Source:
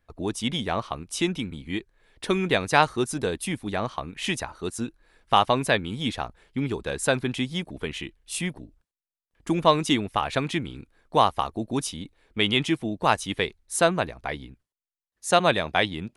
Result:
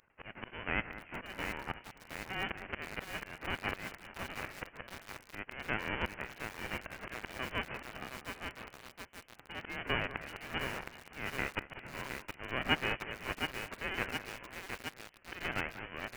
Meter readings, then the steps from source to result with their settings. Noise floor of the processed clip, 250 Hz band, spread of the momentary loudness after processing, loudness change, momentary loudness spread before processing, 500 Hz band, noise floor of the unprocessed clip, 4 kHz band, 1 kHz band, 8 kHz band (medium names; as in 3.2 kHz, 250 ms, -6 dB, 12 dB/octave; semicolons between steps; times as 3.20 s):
-60 dBFS, -17.5 dB, 11 LU, -13.5 dB, 13 LU, -18.0 dB, under -85 dBFS, -13.0 dB, -16.5 dB, -19.0 dB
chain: formants flattened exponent 0.1; high-pass 1.2 kHz 6 dB/octave; dynamic bell 2.2 kHz, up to -7 dB, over -44 dBFS, Q 3.2; peak limiter -10.5 dBFS, peak gain reduction 9.5 dB; slow attack 435 ms; frequency inversion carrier 3.2 kHz; on a send: echo whose repeats swap between lows and highs 190 ms, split 2.1 kHz, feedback 70%, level -13 dB; on the sum: bit-crushed delay 716 ms, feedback 80%, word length 8-bit, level -5.5 dB; trim +5.5 dB